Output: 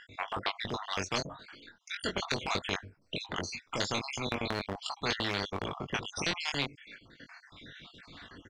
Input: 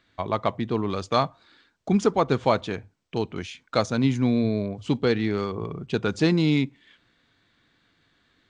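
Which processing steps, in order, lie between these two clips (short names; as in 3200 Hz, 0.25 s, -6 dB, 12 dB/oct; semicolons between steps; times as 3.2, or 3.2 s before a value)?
random spectral dropouts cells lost 60%; LPF 5900 Hz 12 dB/oct; transient shaper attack -5 dB, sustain -9 dB; doubler 21 ms -5 dB; spectral compressor 4:1; gain -2 dB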